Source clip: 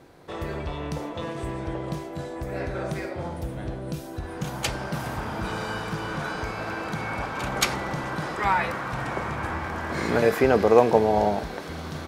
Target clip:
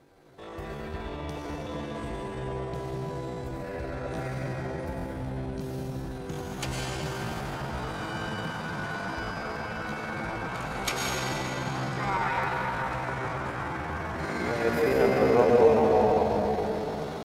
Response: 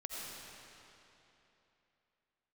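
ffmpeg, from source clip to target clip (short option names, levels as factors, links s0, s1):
-filter_complex "[1:a]atrim=start_sample=2205,asetrate=48510,aresample=44100[s0];[0:a][s0]afir=irnorm=-1:irlink=0,atempo=0.7,volume=0.794"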